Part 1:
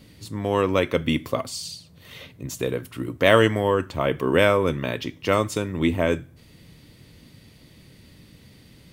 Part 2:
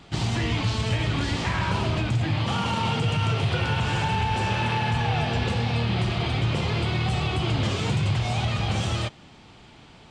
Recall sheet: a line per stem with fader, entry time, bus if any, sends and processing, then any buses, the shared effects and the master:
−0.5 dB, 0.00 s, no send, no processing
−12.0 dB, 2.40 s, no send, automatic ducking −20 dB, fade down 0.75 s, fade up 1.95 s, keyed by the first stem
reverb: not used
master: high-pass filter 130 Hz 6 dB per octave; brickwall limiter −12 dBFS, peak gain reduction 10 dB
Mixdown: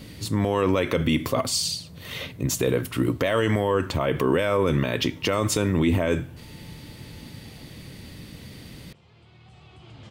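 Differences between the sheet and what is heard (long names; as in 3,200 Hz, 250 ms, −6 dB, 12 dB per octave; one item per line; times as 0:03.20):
stem 1 −0.5 dB → +8.0 dB
master: missing high-pass filter 130 Hz 6 dB per octave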